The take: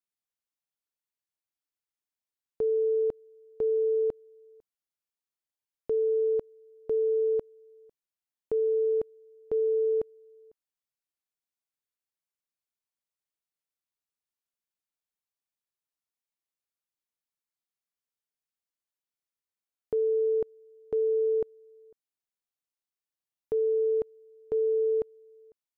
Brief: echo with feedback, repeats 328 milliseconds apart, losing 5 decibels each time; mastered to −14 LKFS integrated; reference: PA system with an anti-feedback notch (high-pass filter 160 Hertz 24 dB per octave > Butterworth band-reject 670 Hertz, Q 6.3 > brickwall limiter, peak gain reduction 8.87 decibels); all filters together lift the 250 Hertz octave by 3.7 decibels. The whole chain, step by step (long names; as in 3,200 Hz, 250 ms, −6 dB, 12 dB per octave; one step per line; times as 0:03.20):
high-pass filter 160 Hz 24 dB per octave
Butterworth band-reject 670 Hz, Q 6.3
parametric band 250 Hz +6 dB
repeating echo 328 ms, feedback 56%, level −5 dB
level +15.5 dB
brickwall limiter −8.5 dBFS